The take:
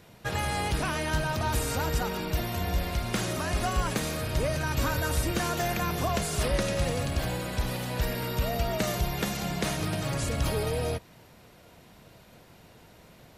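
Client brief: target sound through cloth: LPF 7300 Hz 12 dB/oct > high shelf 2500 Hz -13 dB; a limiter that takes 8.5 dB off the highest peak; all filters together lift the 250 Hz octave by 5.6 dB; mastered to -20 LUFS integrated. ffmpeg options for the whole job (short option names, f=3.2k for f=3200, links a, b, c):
-af "equalizer=f=250:t=o:g=8,alimiter=limit=-20.5dB:level=0:latency=1,lowpass=7.3k,highshelf=f=2.5k:g=-13,volume=11dB"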